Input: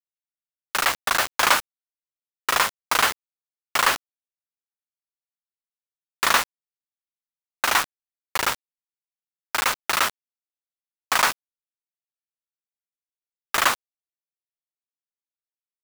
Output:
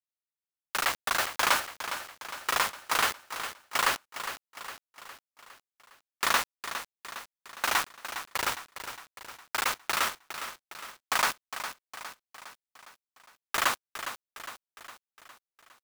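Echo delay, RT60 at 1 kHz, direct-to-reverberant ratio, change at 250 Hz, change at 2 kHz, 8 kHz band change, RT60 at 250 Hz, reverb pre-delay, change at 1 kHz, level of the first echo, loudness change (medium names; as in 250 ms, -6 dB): 409 ms, no reverb, no reverb, -6.0 dB, -6.0 dB, -6.0 dB, no reverb, no reverb, -6.0 dB, -10.5 dB, -8.0 dB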